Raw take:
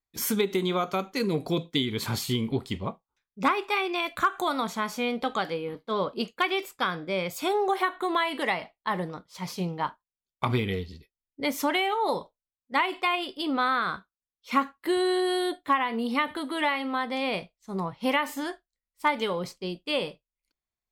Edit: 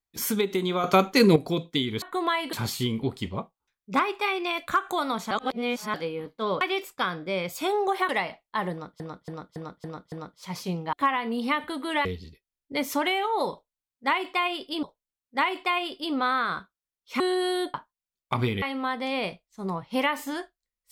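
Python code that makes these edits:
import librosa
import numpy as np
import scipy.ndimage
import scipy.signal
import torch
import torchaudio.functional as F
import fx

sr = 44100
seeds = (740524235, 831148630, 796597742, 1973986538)

y = fx.edit(x, sr, fx.clip_gain(start_s=0.84, length_s=0.52, db=9.5),
    fx.reverse_span(start_s=4.8, length_s=0.63),
    fx.cut(start_s=6.1, length_s=0.32),
    fx.move(start_s=7.9, length_s=0.51, to_s=2.02),
    fx.repeat(start_s=9.04, length_s=0.28, count=6),
    fx.swap(start_s=9.85, length_s=0.88, other_s=15.6, other_length_s=1.12),
    fx.repeat(start_s=12.2, length_s=1.31, count=2),
    fx.cut(start_s=14.57, length_s=0.49), tone=tone)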